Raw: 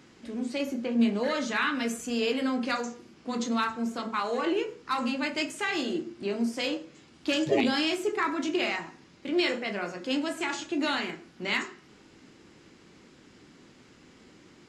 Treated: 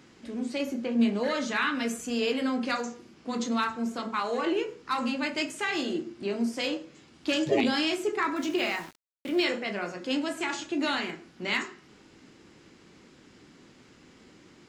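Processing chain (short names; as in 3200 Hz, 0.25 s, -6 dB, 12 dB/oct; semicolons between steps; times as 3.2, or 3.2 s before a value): 8.36–9.44 sample gate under -43 dBFS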